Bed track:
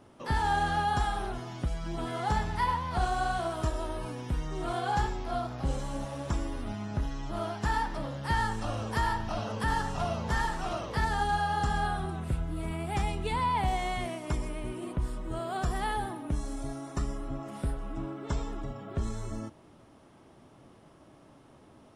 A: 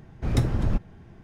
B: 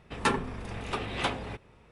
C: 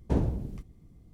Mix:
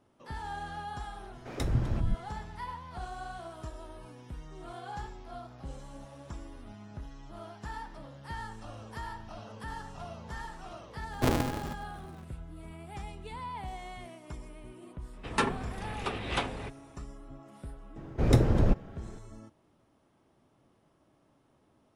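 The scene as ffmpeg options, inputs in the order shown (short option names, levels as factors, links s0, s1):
-filter_complex "[1:a]asplit=2[s0][s1];[0:a]volume=0.266[s2];[s0]acrossover=split=260[s3][s4];[s3]adelay=140[s5];[s5][s4]amix=inputs=2:normalize=0[s6];[3:a]aeval=exprs='val(0)*sgn(sin(2*PI*190*n/s))':c=same[s7];[s1]equalizer=f=480:t=o:w=1.2:g=7.5[s8];[s6]atrim=end=1.23,asetpts=PTS-STARTPTS,volume=0.562,afade=t=in:d=0.004:c=hsin,afade=t=out:st=1.226:d=0.004:c=hsin,adelay=1230[s9];[s7]atrim=end=1.13,asetpts=PTS-STARTPTS,volume=0.891,afade=t=in:d=0.004:c=hsin,afade=t=out:st=1.126:d=0.004:c=hsin,adelay=11120[s10];[2:a]atrim=end=1.91,asetpts=PTS-STARTPTS,volume=0.841,afade=t=in:d=0.004:c=hsin,afade=t=out:st=1.906:d=0.004:c=hsin,adelay=15130[s11];[s8]atrim=end=1.23,asetpts=PTS-STARTPTS,volume=0.944,afade=t=in:d=0.004:c=hsin,afade=t=out:st=1.226:d=0.004:c=hsin,adelay=792036S[s12];[s2][s9][s10][s11][s12]amix=inputs=5:normalize=0"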